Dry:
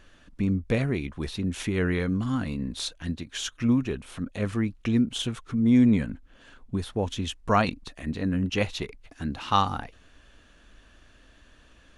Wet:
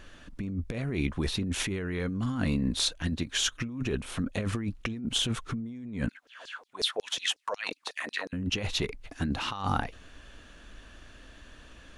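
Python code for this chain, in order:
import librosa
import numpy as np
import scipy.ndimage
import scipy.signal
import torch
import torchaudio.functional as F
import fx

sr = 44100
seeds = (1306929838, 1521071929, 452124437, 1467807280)

y = fx.over_compress(x, sr, threshold_db=-31.0, ratio=-1.0)
y = fx.filter_lfo_highpass(y, sr, shape='saw_down', hz=5.5, low_hz=420.0, high_hz=5600.0, q=5.3, at=(6.09, 8.33))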